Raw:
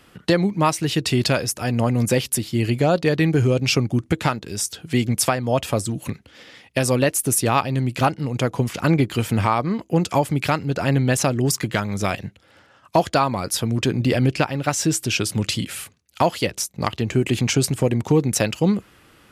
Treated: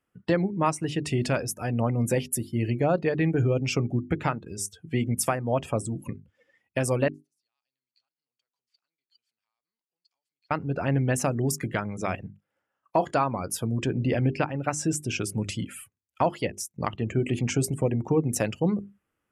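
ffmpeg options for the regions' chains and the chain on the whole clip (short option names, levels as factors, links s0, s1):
-filter_complex "[0:a]asettb=1/sr,asplit=3[s0][s1][s2];[s0]atrim=end=7.084[s3];[s1]atrim=start=7.08:end=10.51,asetpts=PTS-STARTPTS,afade=t=in:d=0.004:c=qsin,afade=t=out:st=3.426:d=0.004:c=qsin,acompressor=threshold=0.0501:ratio=6:attack=3.2:release=140:knee=1:detection=peak,bandpass=f=4400:t=q:w=7.2[s4];[s2]atrim=start=10.506[s5];[s3][s4]acrossfade=d=0.004:c1=hsin:c2=qsin[s6];[s6][s5]acrossfade=d=0.004:c1=qsin:c2=hsin,asettb=1/sr,asplit=3[s7][s8][s9];[s7]atrim=end=12.274[s10];[s8]atrim=start=12.27:end=13.16,asetpts=PTS-STARTPTS,afade=t=in:d=0.004:c=qsin,afade=t=out:st=0.886:d=0.004:c=qsin,equalizer=f=85:w=1.1:g=-10,asplit=2[s11][s12];[s12]adelay=33,volume=0.251[s13];[s11][s13]amix=inputs=2:normalize=0,atrim=end_sample=39249[s14];[s9]atrim=start=13.156[s15];[s10][s14]acrossfade=d=0.004:c1=hsin:c2=qsin[s16];[s16][s15]acrossfade=d=0.004:c1=qsin:c2=hsin,bandreject=f=50:t=h:w=6,bandreject=f=100:t=h:w=6,bandreject=f=150:t=h:w=6,bandreject=f=200:t=h:w=6,bandreject=f=250:t=h:w=6,bandreject=f=300:t=h:w=6,bandreject=f=350:t=h:w=6,bandreject=f=400:t=h:w=6,afftdn=nr=22:nf=-35,equalizer=f=4100:t=o:w=0.77:g=-12,volume=0.562"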